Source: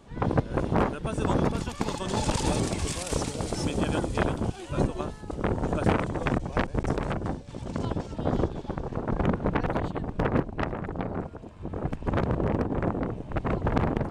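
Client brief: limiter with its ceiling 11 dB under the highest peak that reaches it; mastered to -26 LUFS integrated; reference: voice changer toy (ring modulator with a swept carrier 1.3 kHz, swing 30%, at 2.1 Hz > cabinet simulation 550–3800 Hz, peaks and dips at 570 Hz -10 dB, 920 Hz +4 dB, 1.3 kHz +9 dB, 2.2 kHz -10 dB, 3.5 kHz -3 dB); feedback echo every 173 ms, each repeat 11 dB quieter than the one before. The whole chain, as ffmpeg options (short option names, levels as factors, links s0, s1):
-af "alimiter=limit=0.106:level=0:latency=1,aecho=1:1:173|346|519:0.282|0.0789|0.0221,aeval=exprs='val(0)*sin(2*PI*1300*n/s+1300*0.3/2.1*sin(2*PI*2.1*n/s))':c=same,highpass=550,equalizer=f=570:t=q:w=4:g=-10,equalizer=f=920:t=q:w=4:g=4,equalizer=f=1300:t=q:w=4:g=9,equalizer=f=2200:t=q:w=4:g=-10,equalizer=f=3500:t=q:w=4:g=-3,lowpass=f=3800:w=0.5412,lowpass=f=3800:w=1.3066,volume=1.58"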